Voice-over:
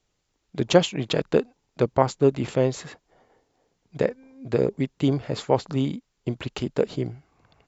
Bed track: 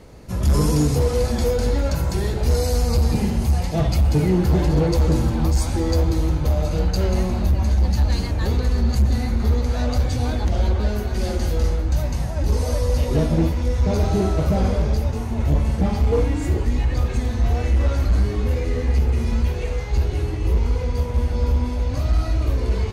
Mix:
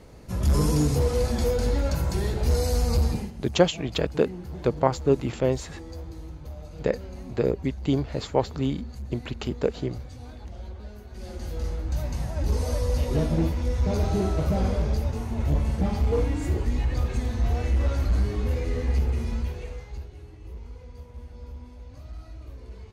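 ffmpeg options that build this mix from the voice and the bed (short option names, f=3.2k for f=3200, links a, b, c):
-filter_complex "[0:a]adelay=2850,volume=-2dB[a];[1:a]volume=10.5dB,afade=t=out:st=3.02:d=0.3:silence=0.16788,afade=t=in:st=11.07:d=1.26:silence=0.188365,afade=t=out:st=18.97:d=1.13:silence=0.158489[b];[a][b]amix=inputs=2:normalize=0"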